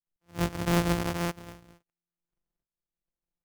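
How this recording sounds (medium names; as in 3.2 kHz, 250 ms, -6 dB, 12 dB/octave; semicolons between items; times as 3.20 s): a buzz of ramps at a fixed pitch in blocks of 256 samples; tremolo saw up 0.76 Hz, depth 80%; aliases and images of a low sample rate 4 kHz, jitter 20%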